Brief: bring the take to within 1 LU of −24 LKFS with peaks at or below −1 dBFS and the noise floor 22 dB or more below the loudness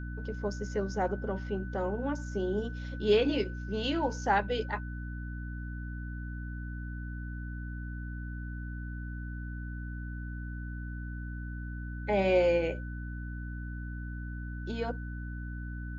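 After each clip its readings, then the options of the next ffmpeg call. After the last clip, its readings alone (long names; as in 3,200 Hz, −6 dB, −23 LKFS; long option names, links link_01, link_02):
mains hum 60 Hz; hum harmonics up to 300 Hz; level of the hum −36 dBFS; interfering tone 1,500 Hz; level of the tone −47 dBFS; integrated loudness −34.5 LKFS; sample peak −15.0 dBFS; target loudness −24.0 LKFS
→ -af "bandreject=frequency=60:width_type=h:width=4,bandreject=frequency=120:width_type=h:width=4,bandreject=frequency=180:width_type=h:width=4,bandreject=frequency=240:width_type=h:width=4,bandreject=frequency=300:width_type=h:width=4"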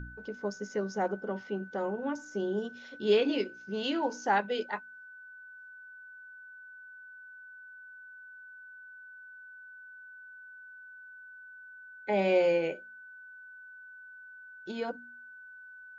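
mains hum none found; interfering tone 1,500 Hz; level of the tone −47 dBFS
→ -af "bandreject=frequency=1500:width=30"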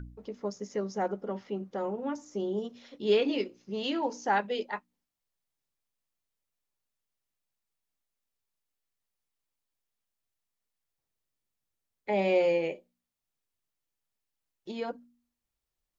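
interfering tone none found; integrated loudness −31.5 LKFS; sample peak −14.5 dBFS; target loudness −24.0 LKFS
→ -af "volume=7.5dB"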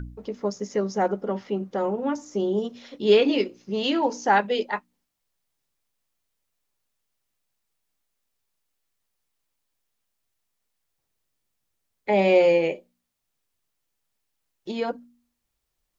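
integrated loudness −24.0 LKFS; sample peak −7.0 dBFS; background noise floor −79 dBFS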